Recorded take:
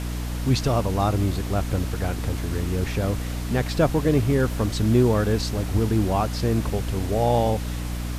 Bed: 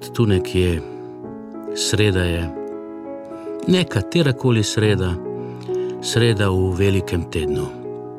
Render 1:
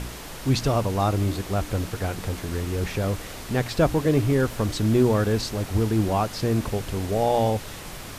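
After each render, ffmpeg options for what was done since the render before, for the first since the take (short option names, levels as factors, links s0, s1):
-af "bandreject=f=60:t=h:w=4,bandreject=f=120:t=h:w=4,bandreject=f=180:t=h:w=4,bandreject=f=240:t=h:w=4,bandreject=f=300:t=h:w=4"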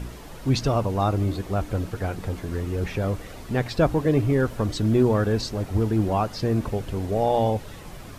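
-af "afftdn=nr=9:nf=-38"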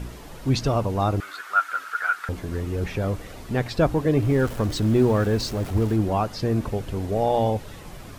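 -filter_complex "[0:a]asettb=1/sr,asplit=3[s0][s1][s2];[s0]atrim=end=1.204[s3];[s1]atrim=start=1.2:end=2.29,asetpts=PTS-STARTPTS,afade=t=in:d=0.004:c=qsin,afade=t=out:st=1.086:d=0.004:c=qsin,highpass=f=1400:t=q:w=12[s4];[s2]atrim=start=2.286[s5];[s3][s4]acrossfade=d=0.004:c1=hsin:c2=qsin[s6];[s6][s5]acrossfade=d=0.004:c1=qsin:c2=hsin,asettb=1/sr,asplit=3[s7][s8][s9];[s7]atrim=end=4.224[s10];[s8]atrim=start=4.22:end=5.96,asetpts=PTS-STARTPTS,afade=t=in:d=0.004:c=qsin,afade=t=out:st=1.736:d=0.004:c=qsin,aeval=exprs='val(0)+0.5*0.0188*sgn(val(0))':c=same[s11];[s9]atrim=start=5.956[s12];[s10][s11]acrossfade=d=0.004:c1=hsin:c2=qsin[s13];[s13][s12]acrossfade=d=0.004:c1=qsin:c2=hsin"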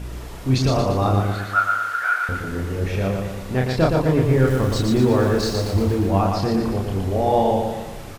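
-filter_complex "[0:a]asplit=2[s0][s1];[s1]adelay=31,volume=0.75[s2];[s0][s2]amix=inputs=2:normalize=0,aecho=1:1:117|234|351|468|585|702|819:0.631|0.322|0.164|0.0837|0.0427|0.0218|0.0111"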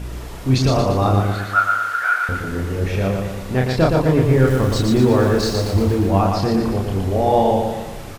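-af "volume=1.33,alimiter=limit=0.708:level=0:latency=1"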